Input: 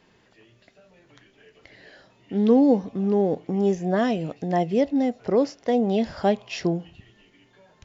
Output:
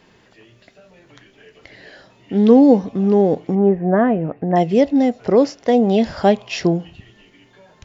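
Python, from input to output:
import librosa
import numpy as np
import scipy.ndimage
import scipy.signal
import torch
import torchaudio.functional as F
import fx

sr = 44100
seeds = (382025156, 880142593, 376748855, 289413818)

y = fx.lowpass(x, sr, hz=1800.0, slope=24, at=(3.54, 4.55), fade=0.02)
y = F.gain(torch.from_numpy(y), 7.0).numpy()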